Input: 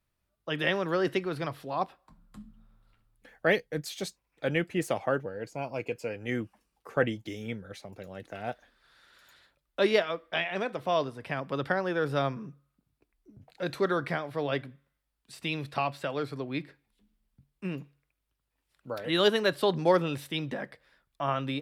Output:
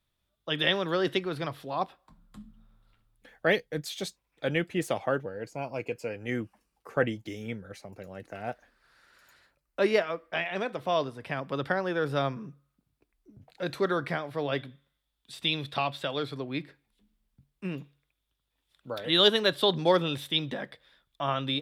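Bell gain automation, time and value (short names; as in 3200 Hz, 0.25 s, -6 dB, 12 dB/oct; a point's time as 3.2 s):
bell 3500 Hz 0.3 oct
+12.5 dB
from 1.19 s +5 dB
from 5.3 s -2.5 dB
from 7.69 s -9 dB
from 10.46 s +2 dB
from 14.58 s +14 dB
from 16.37 s +3 dB
from 17.76 s +12.5 dB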